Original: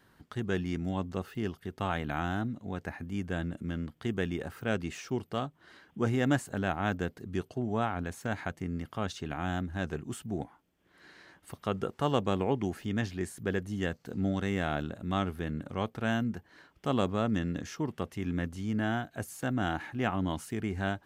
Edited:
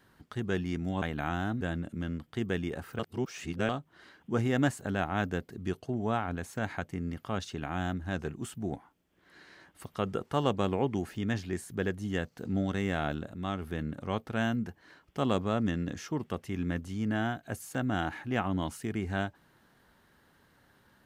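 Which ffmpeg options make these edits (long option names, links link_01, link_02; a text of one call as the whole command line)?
ffmpeg -i in.wav -filter_complex "[0:a]asplit=7[link_01][link_02][link_03][link_04][link_05][link_06][link_07];[link_01]atrim=end=1.022[link_08];[link_02]atrim=start=1.928:end=2.522[link_09];[link_03]atrim=start=3.288:end=4.672[link_10];[link_04]atrim=start=4.668:end=5.372,asetpts=PTS-STARTPTS,areverse[link_11];[link_05]atrim=start=5.368:end=15.022[link_12];[link_06]atrim=start=15.018:end=15.302,asetpts=PTS-STARTPTS,volume=-4dB[link_13];[link_07]atrim=start=15.298[link_14];[link_08][link_09]acrossfade=duration=0.004:curve1=hsin:curve2=hsin[link_15];[link_15][link_10]acrossfade=duration=0.004:curve1=hsin:curve2=hsin[link_16];[link_16][link_11]acrossfade=duration=0.004:curve1=hsin:curve2=hsin[link_17];[link_17][link_12]acrossfade=duration=0.004:curve1=hsin:curve2=hsin[link_18];[link_18][link_13]acrossfade=duration=0.004:curve1=hsin:curve2=hsin[link_19];[link_19][link_14]acrossfade=duration=0.004:curve1=hsin:curve2=hsin" out.wav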